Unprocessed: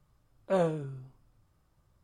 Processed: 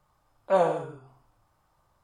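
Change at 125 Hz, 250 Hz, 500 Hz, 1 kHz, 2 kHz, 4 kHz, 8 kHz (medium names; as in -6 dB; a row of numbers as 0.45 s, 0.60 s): -4.5 dB, -2.0 dB, +5.0 dB, +10.0 dB, +5.5 dB, +3.5 dB, no reading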